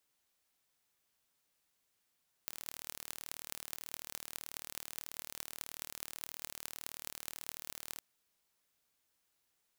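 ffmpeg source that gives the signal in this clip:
ffmpeg -f lavfi -i "aevalsrc='0.266*eq(mod(n,1151),0)*(0.5+0.5*eq(mod(n,9208),0))':duration=5.53:sample_rate=44100" out.wav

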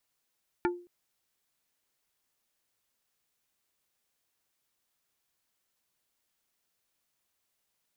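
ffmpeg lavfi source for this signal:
ffmpeg -f lavfi -i "aevalsrc='0.0708*pow(10,-3*t/0.39)*sin(2*PI*352*t)+0.0531*pow(10,-3*t/0.13)*sin(2*PI*880*t)+0.0398*pow(10,-3*t/0.074)*sin(2*PI*1408*t)+0.0299*pow(10,-3*t/0.057)*sin(2*PI*1760*t)+0.0224*pow(10,-3*t/0.041)*sin(2*PI*2288*t)':duration=0.22:sample_rate=44100" out.wav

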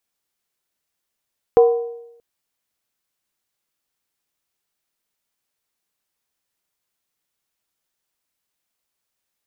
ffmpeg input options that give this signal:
ffmpeg -f lavfi -i "aevalsrc='0.501*pow(10,-3*t/0.86)*sin(2*PI*469*t)+0.15*pow(10,-3*t/0.681)*sin(2*PI*747.6*t)+0.0447*pow(10,-3*t/0.588)*sin(2*PI*1001.8*t)+0.0133*pow(10,-3*t/0.568)*sin(2*PI*1076.8*t)+0.00398*pow(10,-3*t/0.528)*sin(2*PI*1244.3*t)':duration=0.63:sample_rate=44100" out.wav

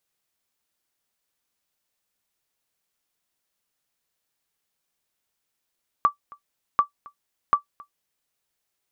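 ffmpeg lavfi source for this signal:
ffmpeg -f lavfi -i "aevalsrc='0.376*(sin(2*PI*1160*mod(t,0.74))*exp(-6.91*mod(t,0.74)/0.11)+0.0562*sin(2*PI*1160*max(mod(t,0.74)-0.27,0))*exp(-6.91*max(mod(t,0.74)-0.27,0)/0.11))':duration=2.22:sample_rate=44100" out.wav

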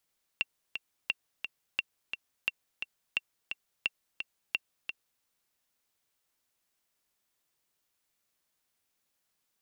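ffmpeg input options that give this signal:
ffmpeg -f lavfi -i "aevalsrc='pow(10,(-14.5-7*gte(mod(t,2*60/174),60/174))/20)*sin(2*PI*2730*mod(t,60/174))*exp(-6.91*mod(t,60/174)/0.03)':duration=4.82:sample_rate=44100" out.wav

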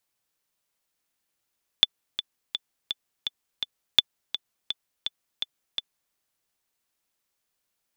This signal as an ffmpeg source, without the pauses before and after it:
ffmpeg -f lavfi -i "aevalsrc='pow(10,(-2-12.5*gte(mod(t,6*60/167),60/167))/20)*sin(2*PI*3490*mod(t,60/167))*exp(-6.91*mod(t,60/167)/0.03)':duration=4.31:sample_rate=44100" out.wav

